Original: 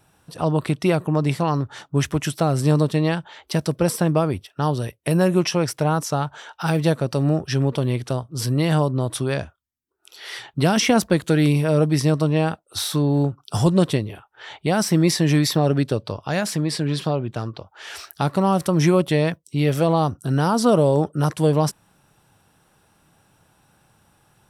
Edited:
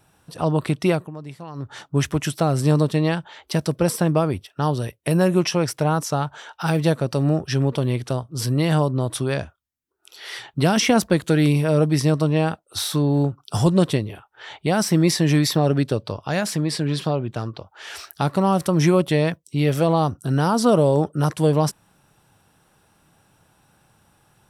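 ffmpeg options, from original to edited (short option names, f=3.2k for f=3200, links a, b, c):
-filter_complex "[0:a]asplit=3[a][b][c];[a]atrim=end=1.11,asetpts=PTS-STARTPTS,afade=t=out:st=0.91:d=0.2:silence=0.16788[d];[b]atrim=start=1.11:end=1.54,asetpts=PTS-STARTPTS,volume=-15.5dB[e];[c]atrim=start=1.54,asetpts=PTS-STARTPTS,afade=t=in:d=0.2:silence=0.16788[f];[d][e][f]concat=n=3:v=0:a=1"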